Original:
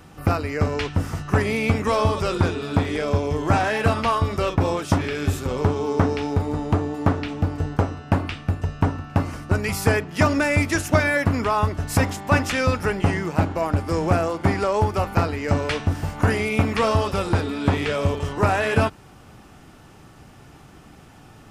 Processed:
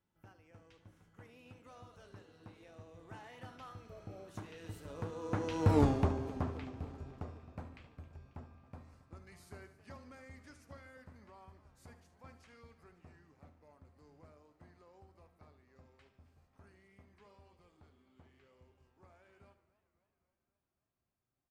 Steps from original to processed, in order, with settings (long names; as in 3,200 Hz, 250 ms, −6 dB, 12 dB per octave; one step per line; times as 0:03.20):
source passing by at 0:05.79, 38 m/s, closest 2.8 metres
on a send: repeating echo 73 ms, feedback 49%, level −13 dB
on the sum: healed spectral selection 0:03.91–0:04.25, 840–11,000 Hz before
feedback echo with a swinging delay time 268 ms, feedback 64%, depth 171 cents, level −17.5 dB